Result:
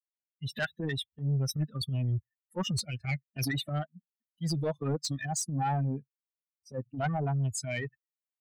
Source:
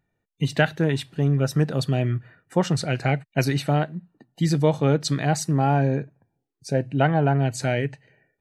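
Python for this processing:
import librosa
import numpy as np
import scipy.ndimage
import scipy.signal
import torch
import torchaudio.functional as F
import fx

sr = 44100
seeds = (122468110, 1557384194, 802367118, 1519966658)

p1 = fx.bin_expand(x, sr, power=3.0)
p2 = scipy.signal.sosfilt(scipy.signal.butter(2, 49.0, 'highpass', fs=sr, output='sos'), p1)
p3 = fx.peak_eq(p2, sr, hz=320.0, db=-5.0, octaves=2.0)
p4 = fx.rider(p3, sr, range_db=10, speed_s=0.5)
p5 = p3 + (p4 * 10.0 ** (-1.0 / 20.0))
p6 = fx.transient(p5, sr, attack_db=-10, sustain_db=4)
p7 = 10.0 ** (-21.0 / 20.0) * np.tanh(p6 / 10.0 ** (-21.0 / 20.0))
y = p7 * 10.0 ** (-2.0 / 20.0)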